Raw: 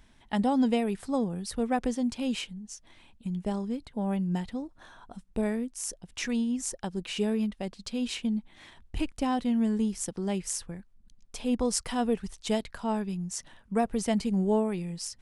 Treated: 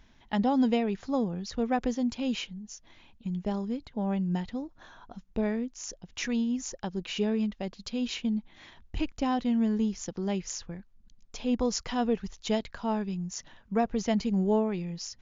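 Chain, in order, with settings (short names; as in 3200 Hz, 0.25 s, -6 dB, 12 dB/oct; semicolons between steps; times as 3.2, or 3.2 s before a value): brick-wall FIR low-pass 7200 Hz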